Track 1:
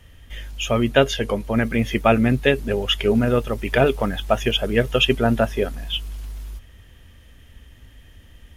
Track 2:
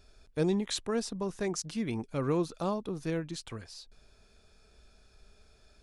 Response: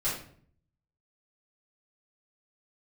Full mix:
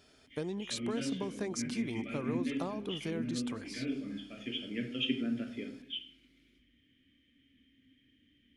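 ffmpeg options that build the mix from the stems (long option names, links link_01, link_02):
-filter_complex "[0:a]asplit=3[link_01][link_02][link_03];[link_01]bandpass=frequency=270:width_type=q:width=8,volume=0dB[link_04];[link_02]bandpass=frequency=2290:width_type=q:width=8,volume=-6dB[link_05];[link_03]bandpass=frequency=3010:width_type=q:width=8,volume=-9dB[link_06];[link_04][link_05][link_06]amix=inputs=3:normalize=0,volume=-6.5dB,asplit=2[link_07][link_08];[link_08]volume=-8.5dB[link_09];[1:a]highpass=140,acompressor=threshold=-35dB:ratio=12,volume=1dB,asplit=3[link_10][link_11][link_12];[link_11]volume=-24dB[link_13];[link_12]apad=whole_len=377704[link_14];[link_07][link_14]sidechaincompress=threshold=-52dB:ratio=8:attack=16:release=1130[link_15];[2:a]atrim=start_sample=2205[link_16];[link_09][link_16]afir=irnorm=-1:irlink=0[link_17];[link_13]aecho=0:1:199|398|597|796|995|1194|1393|1592:1|0.54|0.292|0.157|0.085|0.0459|0.0248|0.0134[link_18];[link_15][link_10][link_17][link_18]amix=inputs=4:normalize=0"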